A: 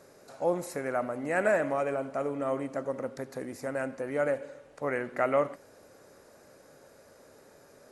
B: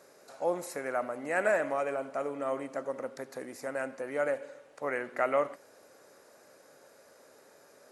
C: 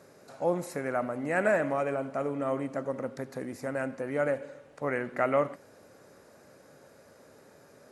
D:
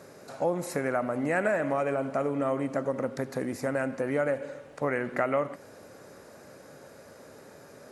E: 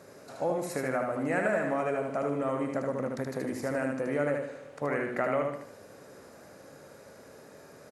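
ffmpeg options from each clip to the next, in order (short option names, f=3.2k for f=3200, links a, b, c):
-af "highpass=f=430:p=1"
-af "bass=f=250:g=14,treble=f=4k:g=-3,volume=1dB"
-af "acompressor=threshold=-31dB:ratio=3,volume=6dB"
-af "aecho=1:1:76|152|228|304|380:0.668|0.247|0.0915|0.0339|0.0125,volume=-3dB"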